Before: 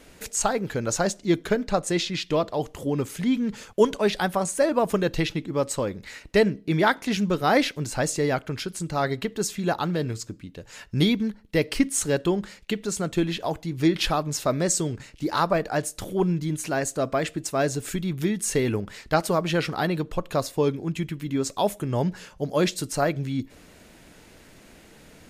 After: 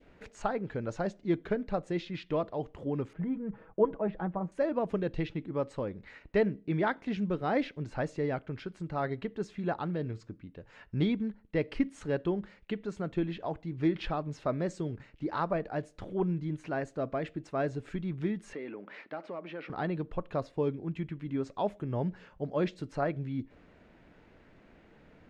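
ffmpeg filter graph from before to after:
-filter_complex "[0:a]asettb=1/sr,asplit=3[a][b][c];[a]atrim=end=3.134[d];[b]atrim=start=3.13:end=4.52,asetpts=PTS-STARTPTS,afade=t=in:d=0.004:c=qsin,afade=t=out:st=1.386:d=0.004:c=qsin,lowpass=1.2k,aecho=1:1:6.2:0.57,atrim=end_sample=61299[e];[c]atrim=start=4.516[f];[d][e]acrossfade=d=0.004:c1=hsin:c2=qsin[g];[g][f]acrossfade=d=0.004:c1=qsin:c2=hsin,asettb=1/sr,asplit=3[h][i][j];[h]atrim=end=18.534[k];[i]atrim=start=18.53:end=19.7,asetpts=PTS-STARTPTS,afade=t=in:d=0.004:c=qsin,afade=t=out:st=1.166:d=0.004:c=qsin,acompressor=threshold=-35dB:ratio=3:attack=3.2:release=140:knee=1:detection=peak,asplit=2[l][m];[m]highpass=f=720:p=1,volume=11dB,asoftclip=type=tanh:threshold=-23dB[n];[l][n]amix=inputs=2:normalize=0,lowpass=f=3.3k:p=1,volume=-6dB,highpass=f=170:w=0.5412,highpass=f=170:w=1.3066,equalizer=f=300:t=q:w=4:g=6,equalizer=f=580:t=q:w=4:g=5,equalizer=f=2.3k:t=q:w=4:g=4,equalizer=f=7.2k:t=q:w=4:g=-4,lowpass=f=8.9k:w=0.5412,lowpass=f=8.9k:w=1.3066[o];[j]atrim=start=19.696[p];[k][o]acrossfade=d=0.004:c1=hsin:c2=qsin[q];[q][p]acrossfade=d=0.004:c1=qsin:c2=hsin,lowpass=2.1k,adynamicequalizer=threshold=0.0112:dfrequency=1200:dqfactor=0.88:tfrequency=1200:tqfactor=0.88:attack=5:release=100:ratio=0.375:range=4:mode=cutabove:tftype=bell,volume=-7dB"

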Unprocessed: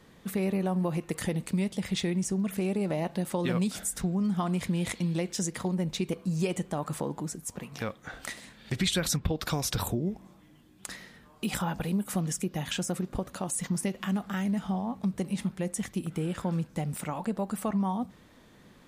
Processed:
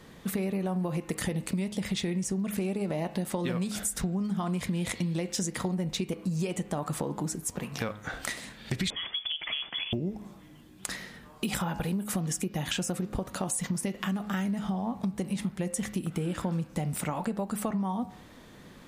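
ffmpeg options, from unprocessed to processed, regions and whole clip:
-filter_complex "[0:a]asettb=1/sr,asplit=3[a][b][c];[a]atrim=end=8.904[d];[b]atrim=start=8.9:end=9.93,asetpts=PTS-STARTPTS,afade=t=in:d=0.004:c=qsin,afade=t=out:st=1.026:d=0.004:c=qsin,acompressor=threshold=-33dB:ratio=4:attack=3.2:release=140:knee=1:detection=peak,aeval=exprs='0.0335*(abs(mod(val(0)/0.0335+3,4)-2)-1)':c=same,lowpass=f=3k:t=q:w=0.5098,lowpass=f=3k:t=q:w=0.6013,lowpass=f=3k:t=q:w=0.9,lowpass=f=3k:t=q:w=2.563,afreqshift=-3500[e];[c]atrim=start=9.926[f];[d][e]acrossfade=d=0.004:c1=hsin:c2=qsin[g];[g][f]acrossfade=d=0.004:c1=qsin:c2=hsin,bandreject=f=104.9:t=h:w=4,bandreject=f=209.8:t=h:w=4,bandreject=f=314.7:t=h:w=4,bandreject=f=419.6:t=h:w=4,bandreject=f=524.5:t=h:w=4,bandreject=f=629.4:t=h:w=4,bandreject=f=734.3:t=h:w=4,bandreject=f=839.2:t=h:w=4,bandreject=f=944.1:t=h:w=4,bandreject=f=1.049k:t=h:w=4,bandreject=f=1.1539k:t=h:w=4,bandreject=f=1.2588k:t=h:w=4,bandreject=f=1.3637k:t=h:w=4,bandreject=f=1.4686k:t=h:w=4,bandreject=f=1.5735k:t=h:w=4,bandreject=f=1.6784k:t=h:w=4,bandreject=f=1.7833k:t=h:w=4,bandreject=f=1.8882k:t=h:w=4,bandreject=f=1.9931k:t=h:w=4,bandreject=f=2.098k:t=h:w=4,bandreject=f=2.2029k:t=h:w=4,bandreject=f=2.3078k:t=h:w=4,bandreject=f=2.4127k:t=h:w=4,bandreject=f=2.5176k:t=h:w=4,bandreject=f=2.6225k:t=h:w=4,bandreject=f=2.7274k:t=h:w=4,bandreject=f=2.8323k:t=h:w=4,bandreject=f=2.9372k:t=h:w=4,acompressor=threshold=-33dB:ratio=6,volume=5.5dB"

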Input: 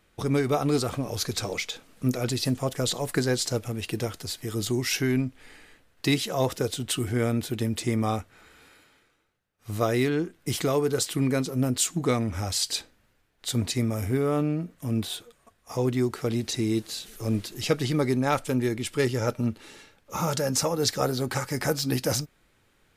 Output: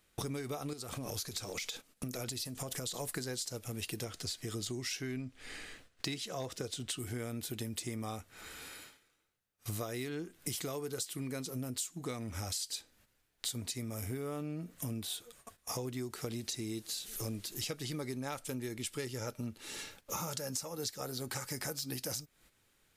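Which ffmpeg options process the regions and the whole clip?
-filter_complex "[0:a]asettb=1/sr,asplit=3[a][b][c];[a]atrim=end=0.734[d];[b]atrim=start=0.73:end=2.94,asetpts=PTS-STARTPTS,afade=t=in:d=0.004:c=qsin,afade=t=out:st=2.206:d=0.004:c=qsin,acompressor=threshold=-32dB:ratio=8:attack=3.2:release=140:knee=1:detection=peak,agate=range=-14dB:threshold=-50dB:ratio=16:release=100:detection=peak[e];[c]atrim=start=2.936[f];[d][e]acrossfade=d=0.004:c1=hsin:c2=qsin[g];[g][f]acrossfade=d=0.004:c1=qsin:c2=hsin,asettb=1/sr,asplit=3[h][i][j];[h]atrim=end=4.044[k];[i]atrim=start=4.04:end=6.99,asetpts=PTS-STARTPTS,afade=t=in:d=0.004:c=qsin,afade=t=out:st=2.946:d=0.004:c=qsin,equalizer=f=13k:t=o:w=0.78:g=-12.5,bandreject=f=890:w=13,asoftclip=type=hard:threshold=-14.5dB[l];[j]atrim=start=6.986[m];[k][l]acrossfade=d=0.004:c1=hsin:c2=qsin[n];[n][m]acrossfade=d=0.004:c1=qsin:c2=hsin,agate=range=-12dB:threshold=-59dB:ratio=16:detection=peak,highshelf=f=3.8k:g=11,acompressor=threshold=-39dB:ratio=10,volume=2.5dB"

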